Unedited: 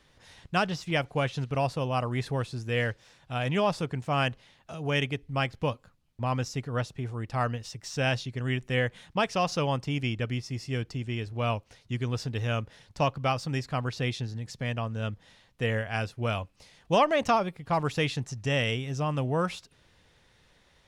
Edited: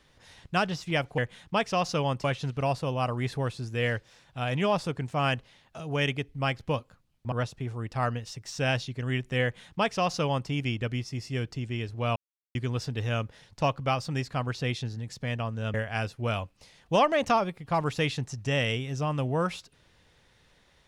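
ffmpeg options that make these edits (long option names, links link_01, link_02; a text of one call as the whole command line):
ffmpeg -i in.wav -filter_complex "[0:a]asplit=7[link_01][link_02][link_03][link_04][link_05][link_06][link_07];[link_01]atrim=end=1.182[link_08];[link_02]atrim=start=8.808:end=9.872[link_09];[link_03]atrim=start=1.178:end=6.262[link_10];[link_04]atrim=start=6.698:end=11.54,asetpts=PTS-STARTPTS,afade=type=out:start_time=4.838:duration=0.004:curve=hsin[link_11];[link_05]atrim=start=11.54:end=11.93,asetpts=PTS-STARTPTS,volume=0[link_12];[link_06]atrim=start=11.93:end=15.122,asetpts=PTS-STARTPTS,afade=type=in:duration=0.004:curve=hsin[link_13];[link_07]atrim=start=15.728[link_14];[link_08][link_09]acrossfade=duration=0.004:curve1=hsin:curve2=hsin[link_15];[link_15][link_10]acrossfade=duration=0.004:curve1=hsin:curve2=hsin[link_16];[link_11][link_12][link_13]concat=n=3:v=0:a=1[link_17];[link_16][link_17]acrossfade=duration=0.004:curve1=hsin:curve2=hsin[link_18];[link_18][link_14]acrossfade=duration=0.004:curve1=hsin:curve2=hsin" out.wav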